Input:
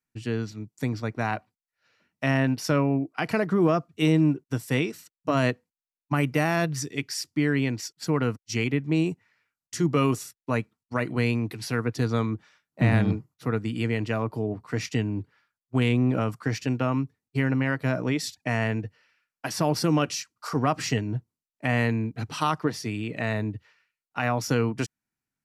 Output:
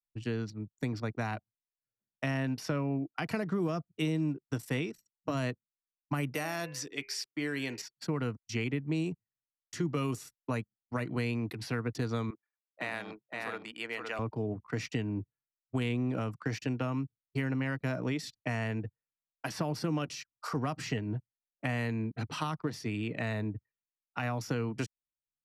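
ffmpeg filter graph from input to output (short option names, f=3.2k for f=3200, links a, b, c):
-filter_complex "[0:a]asettb=1/sr,asplit=3[a][b][c];[a]atrim=end=6.354[d];[b]atrim=start=6.35:end=7.82,asetpts=PTS-STARTPTS,afade=t=in:d=0.004:c=qsin,afade=t=out:st=1.466:d=0.004:c=qsin,bass=f=250:g=-15,treble=f=4k:g=12,bandreject=f=101:t=h:w=4,bandreject=f=202:t=h:w=4,bandreject=f=303:t=h:w=4,bandreject=f=404:t=h:w=4,bandreject=f=505:t=h:w=4,bandreject=f=606:t=h:w=4,bandreject=f=707:t=h:w=4,bandreject=f=808:t=h:w=4,bandreject=f=909:t=h:w=4,bandreject=f=1.01k:t=h:w=4,bandreject=f=1.111k:t=h:w=4,bandreject=f=1.212k:t=h:w=4,bandreject=f=1.313k:t=h:w=4,bandreject=f=1.414k:t=h:w=4,bandreject=f=1.515k:t=h:w=4,bandreject=f=1.616k:t=h:w=4,bandreject=f=1.717k:t=h:w=4,bandreject=f=1.818k:t=h:w=4,bandreject=f=1.919k:t=h:w=4,bandreject=f=2.02k:t=h:w=4,bandreject=f=2.121k:t=h:w=4,bandreject=f=2.222k:t=h:w=4,bandreject=f=2.323k:t=h:w=4,bandreject=f=2.424k:t=h:w=4,bandreject=f=2.525k:t=h:w=4,bandreject=f=2.626k:t=h:w=4,bandreject=f=2.727k:t=h:w=4,bandreject=f=2.828k:t=h:w=4,bandreject=f=2.929k:t=h:w=4,bandreject=f=3.03k:t=h:w=4[e];[c]atrim=start=7.816[f];[d][e]acrossfade=d=0.004:c1=hsin:c2=qsin[g];[g][f]acrossfade=d=0.004:c1=qsin:c2=hsin,asettb=1/sr,asplit=3[h][i][j];[h]atrim=end=12.304[k];[i]atrim=start=12.3:end=14.19,asetpts=PTS-STARTPTS,afade=t=in:d=0.004:c=qsin,afade=t=out:st=1.886:d=0.004:c=qsin,highpass=660,aecho=1:1:515:0.562,atrim=end_sample=83349[l];[j]atrim=start=14.186[m];[k][l]acrossfade=d=0.004:c1=hsin:c2=qsin[n];[n][m]acrossfade=d=0.004:c1=qsin:c2=hsin,anlmdn=0.1,acrossover=split=220|3800[o][p][q];[o]acompressor=threshold=-32dB:ratio=4[r];[p]acompressor=threshold=-31dB:ratio=4[s];[q]acompressor=threshold=-46dB:ratio=4[t];[r][s][t]amix=inputs=3:normalize=0,volume=-2.5dB"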